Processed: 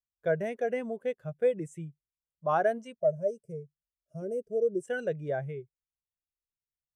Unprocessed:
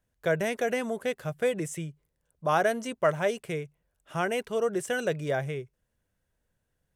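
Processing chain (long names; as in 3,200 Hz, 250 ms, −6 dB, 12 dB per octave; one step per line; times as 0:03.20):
0:02.97–0:04.82: gain on a spectral selection 680–4,700 Hz −17 dB
0:02.78–0:04.22: parametric band 310 Hz −9 dB 0.59 octaves
every bin expanded away from the loudest bin 1.5 to 1
level −3 dB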